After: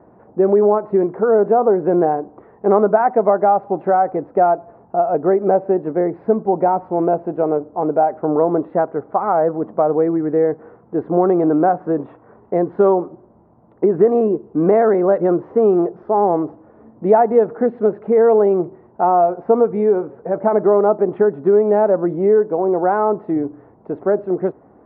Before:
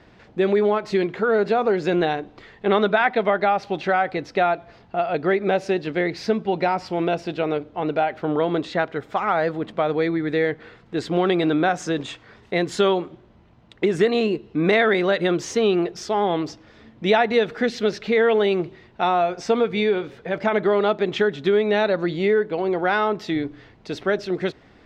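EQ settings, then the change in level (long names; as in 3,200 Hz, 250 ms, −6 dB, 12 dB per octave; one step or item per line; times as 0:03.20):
high-pass filter 280 Hz 6 dB per octave
low-pass filter 1,000 Hz 24 dB per octave
+7.5 dB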